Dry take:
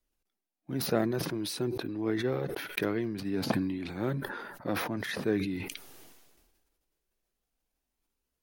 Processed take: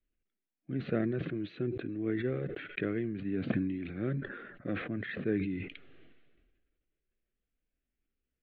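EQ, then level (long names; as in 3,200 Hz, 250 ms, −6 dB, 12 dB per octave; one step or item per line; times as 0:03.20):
low-pass filter 4,600 Hz 24 dB per octave
high-frequency loss of the air 260 metres
phaser with its sweep stopped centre 2,200 Hz, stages 4
0.0 dB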